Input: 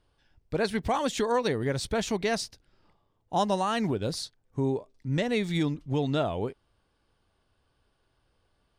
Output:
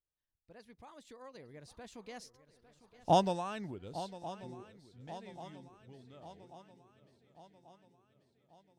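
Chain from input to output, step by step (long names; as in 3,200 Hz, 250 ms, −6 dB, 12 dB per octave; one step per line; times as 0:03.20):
source passing by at 0:03.07, 25 m/s, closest 1.4 metres
feedback echo with a long and a short gap by turns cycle 1,138 ms, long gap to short 3 to 1, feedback 52%, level −15 dB
level +5 dB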